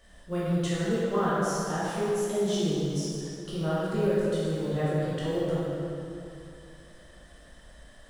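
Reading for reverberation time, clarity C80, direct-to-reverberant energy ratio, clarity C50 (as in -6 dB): 2.7 s, -2.5 dB, -9.5 dB, -4.5 dB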